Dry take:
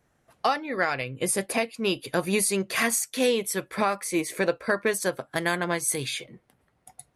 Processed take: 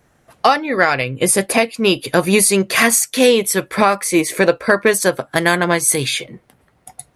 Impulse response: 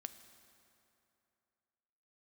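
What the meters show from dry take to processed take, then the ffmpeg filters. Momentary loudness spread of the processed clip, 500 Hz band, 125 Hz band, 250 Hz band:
5 LU, +11.0 dB, +11.5 dB, +11.0 dB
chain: -af "acontrast=34,volume=6dB"

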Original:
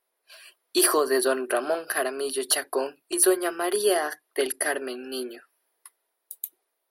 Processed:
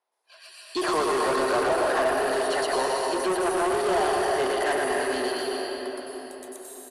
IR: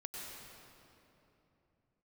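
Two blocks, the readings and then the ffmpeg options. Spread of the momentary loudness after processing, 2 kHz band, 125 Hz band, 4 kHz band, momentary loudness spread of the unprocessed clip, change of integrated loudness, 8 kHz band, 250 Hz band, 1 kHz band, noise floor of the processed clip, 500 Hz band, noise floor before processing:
13 LU, +2.0 dB, can't be measured, −1.0 dB, 13 LU, 0.0 dB, −9.0 dB, +0.5 dB, +6.5 dB, −53 dBFS, +1.5 dB, −79 dBFS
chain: -filter_complex "[0:a]highpass=frequency=110:width=0.5412,highpass=frequency=110:width=1.3066,asplit=2[link_01][link_02];[link_02]bass=frequency=250:gain=-8,treble=frequency=4000:gain=13[link_03];[1:a]atrim=start_sample=2205,adelay=119[link_04];[link_03][link_04]afir=irnorm=-1:irlink=0,volume=2dB[link_05];[link_01][link_05]amix=inputs=2:normalize=0,acrossover=split=2900[link_06][link_07];[link_07]acompressor=threshold=-30dB:ratio=4:attack=1:release=60[link_08];[link_06][link_08]amix=inputs=2:normalize=0,asoftclip=type=tanh:threshold=-26dB,lowpass=frequency=8900:width=0.5412,lowpass=frequency=8900:width=1.3066,asplit=2[link_09][link_10];[link_10]adelay=618,lowpass=frequency=2400:poles=1,volume=-10dB,asplit=2[link_11][link_12];[link_12]adelay=618,lowpass=frequency=2400:poles=1,volume=0.41,asplit=2[link_13][link_14];[link_14]adelay=618,lowpass=frequency=2400:poles=1,volume=0.41,asplit=2[link_15][link_16];[link_16]adelay=618,lowpass=frequency=2400:poles=1,volume=0.41[link_17];[link_09][link_11][link_13][link_15][link_17]amix=inputs=5:normalize=0,dynaudnorm=framelen=400:gausssize=3:maxgain=8dB,equalizer=frequency=880:width_type=o:width=0.8:gain=9.5,volume=-5.5dB"

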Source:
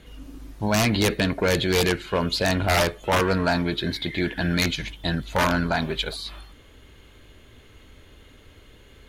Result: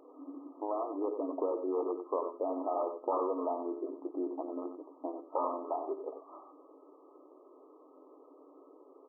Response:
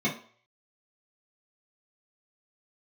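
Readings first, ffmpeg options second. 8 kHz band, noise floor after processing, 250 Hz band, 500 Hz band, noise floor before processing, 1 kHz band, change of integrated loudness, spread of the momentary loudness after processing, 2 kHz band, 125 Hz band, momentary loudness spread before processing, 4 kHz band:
below −40 dB, −59 dBFS, −13.0 dB, −8.5 dB, −51 dBFS, −9.0 dB, −13.0 dB, 11 LU, below −40 dB, below −40 dB, 7 LU, below −40 dB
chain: -af "acompressor=threshold=-31dB:ratio=3,aecho=1:1:92:0.376,afftfilt=real='re*between(b*sr/4096,260,1300)':imag='im*between(b*sr/4096,260,1300)':win_size=4096:overlap=0.75"

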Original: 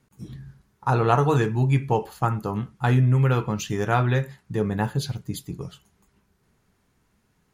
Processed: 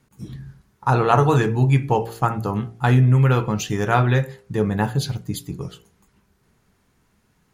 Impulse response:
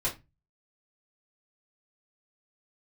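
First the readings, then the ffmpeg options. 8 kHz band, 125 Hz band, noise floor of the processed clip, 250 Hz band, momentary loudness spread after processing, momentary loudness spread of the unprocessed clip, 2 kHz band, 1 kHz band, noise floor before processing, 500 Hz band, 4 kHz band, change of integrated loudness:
+4.0 dB, +3.5 dB, −64 dBFS, +3.5 dB, 17 LU, 17 LU, +4.0 dB, +4.0 dB, −68 dBFS, +3.0 dB, +4.0 dB, +3.5 dB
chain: -af "bandreject=frequency=57.41:width_type=h:width=4,bandreject=frequency=114.82:width_type=h:width=4,bandreject=frequency=172.23:width_type=h:width=4,bandreject=frequency=229.64:width_type=h:width=4,bandreject=frequency=287.05:width_type=h:width=4,bandreject=frequency=344.46:width_type=h:width=4,bandreject=frequency=401.87:width_type=h:width=4,bandreject=frequency=459.28:width_type=h:width=4,bandreject=frequency=516.69:width_type=h:width=4,bandreject=frequency=574.1:width_type=h:width=4,bandreject=frequency=631.51:width_type=h:width=4,bandreject=frequency=688.92:width_type=h:width=4,bandreject=frequency=746.33:width_type=h:width=4,bandreject=frequency=803.74:width_type=h:width=4,volume=4dB"

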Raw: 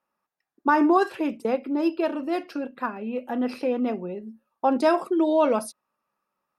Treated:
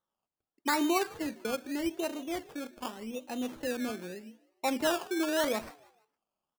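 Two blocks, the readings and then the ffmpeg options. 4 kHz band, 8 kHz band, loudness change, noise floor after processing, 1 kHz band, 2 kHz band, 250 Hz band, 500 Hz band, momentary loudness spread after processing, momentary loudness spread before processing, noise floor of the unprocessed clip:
+4.5 dB, can't be measured, −8.5 dB, below −85 dBFS, −10.0 dB, −4.0 dB, −9.0 dB, −9.5 dB, 12 LU, 12 LU, −85 dBFS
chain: -filter_complex "[0:a]acrusher=samples=18:mix=1:aa=0.000001:lfo=1:lforange=10.8:lforate=0.83,asplit=4[link_01][link_02][link_03][link_04];[link_02]adelay=154,afreqshift=72,volume=-22dB[link_05];[link_03]adelay=308,afreqshift=144,volume=-30.4dB[link_06];[link_04]adelay=462,afreqshift=216,volume=-38.8dB[link_07];[link_01][link_05][link_06][link_07]amix=inputs=4:normalize=0,volume=-9dB"

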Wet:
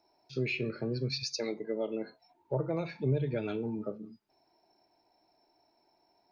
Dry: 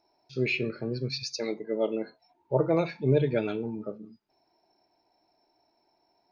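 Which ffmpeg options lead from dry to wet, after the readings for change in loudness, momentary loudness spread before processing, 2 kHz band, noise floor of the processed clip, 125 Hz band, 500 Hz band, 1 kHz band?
−5.0 dB, 13 LU, −5.5 dB, −73 dBFS, −3.0 dB, −6.5 dB, −7.5 dB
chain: -filter_complex "[0:a]acrossover=split=130[link_01][link_02];[link_02]acompressor=threshold=-30dB:ratio=6[link_03];[link_01][link_03]amix=inputs=2:normalize=0"

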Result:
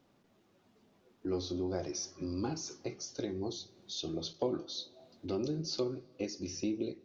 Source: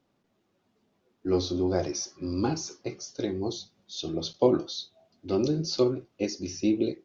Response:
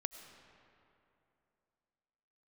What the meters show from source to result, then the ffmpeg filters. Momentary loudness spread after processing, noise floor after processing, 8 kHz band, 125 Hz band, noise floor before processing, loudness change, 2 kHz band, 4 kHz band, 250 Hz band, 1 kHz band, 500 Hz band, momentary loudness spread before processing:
7 LU, −69 dBFS, can't be measured, −8.0 dB, −73 dBFS, −8.5 dB, −8.0 dB, −5.5 dB, −8.5 dB, −9.5 dB, −9.5 dB, 12 LU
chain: -filter_complex "[0:a]acompressor=threshold=-47dB:ratio=2,asplit=2[link_01][link_02];[1:a]atrim=start_sample=2205,asetrate=43218,aresample=44100[link_03];[link_02][link_03]afir=irnorm=-1:irlink=0,volume=-13dB[link_04];[link_01][link_04]amix=inputs=2:normalize=0,volume=2.5dB"

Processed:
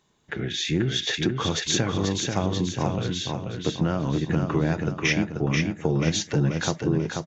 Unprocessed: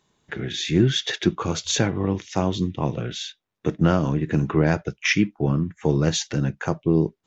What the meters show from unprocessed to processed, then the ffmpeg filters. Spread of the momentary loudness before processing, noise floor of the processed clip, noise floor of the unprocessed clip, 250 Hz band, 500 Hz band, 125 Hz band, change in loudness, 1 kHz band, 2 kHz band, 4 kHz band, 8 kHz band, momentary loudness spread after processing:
9 LU, −47 dBFS, −76 dBFS, −3.0 dB, −3.0 dB, −2.0 dB, −2.0 dB, −1.5 dB, −1.0 dB, 0.0 dB, can't be measured, 5 LU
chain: -af "acompressor=threshold=-20dB:ratio=6,aecho=1:1:486|972|1458|1944|2430:0.596|0.256|0.11|0.0474|0.0204"

